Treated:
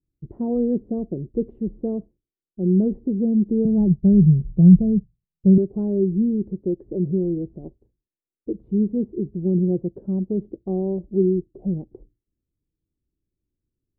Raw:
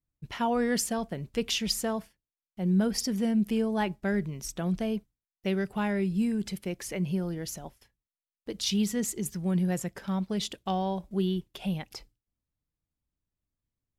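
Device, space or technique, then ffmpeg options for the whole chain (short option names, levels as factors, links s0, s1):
under water: -filter_complex "[0:a]lowpass=f=470:w=0.5412,lowpass=f=470:w=1.3066,equalizer=f=350:t=o:w=0.53:g=9.5,asettb=1/sr,asplit=3[s0][s1][s2];[s0]atrim=end=3.654[s3];[s1]atrim=start=3.65:end=5.58,asetpts=PTS-STARTPTS,afade=t=in:d=0.004:c=qsin,afade=t=out:st=1.926:d=0.004:c=qsin,lowshelf=f=220:t=q:w=3:g=10[s4];[s2]atrim=start=5.576[s5];[s3][s4]acrossfade=d=0.004:c1=hsin:c2=qsin[s6];[s6][s5]acrossfade=d=0.004:c1=qsin:c2=hsin,volume=1.88"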